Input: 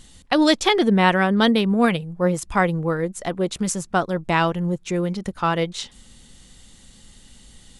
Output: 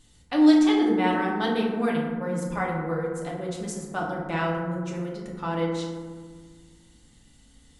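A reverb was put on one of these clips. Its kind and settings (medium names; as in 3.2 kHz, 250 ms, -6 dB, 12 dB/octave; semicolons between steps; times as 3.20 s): FDN reverb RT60 1.6 s, low-frequency decay 1.5×, high-frequency decay 0.35×, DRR -3.5 dB; trim -13 dB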